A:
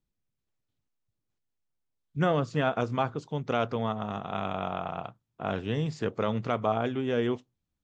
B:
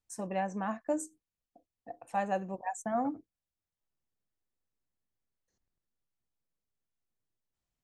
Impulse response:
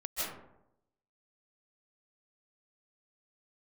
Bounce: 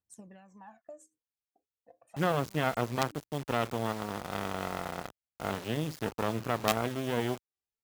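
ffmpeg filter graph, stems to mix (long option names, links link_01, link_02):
-filter_complex "[0:a]acrusher=bits=4:dc=4:mix=0:aa=0.000001,volume=0dB,asplit=2[link_01][link_02];[1:a]acompressor=threshold=-37dB:ratio=10,aphaser=in_gain=1:out_gain=1:delay=2.6:decay=0.73:speed=0.33:type=triangular,volume=-12.5dB[link_03];[link_02]apad=whole_len=345591[link_04];[link_03][link_04]sidechaincompress=threshold=-45dB:ratio=8:attack=16:release=102[link_05];[link_01][link_05]amix=inputs=2:normalize=0,highpass=65"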